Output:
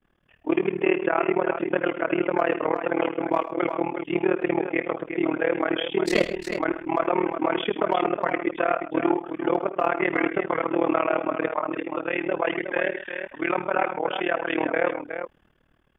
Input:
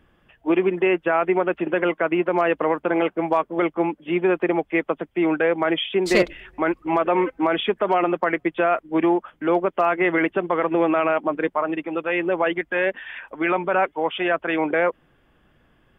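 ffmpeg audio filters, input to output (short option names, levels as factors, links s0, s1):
-af "aecho=1:1:56|64|77|130|360:0.1|0.119|0.188|0.188|0.398,agate=range=0.0224:threshold=0.002:ratio=3:detection=peak,tremolo=f=38:d=0.974"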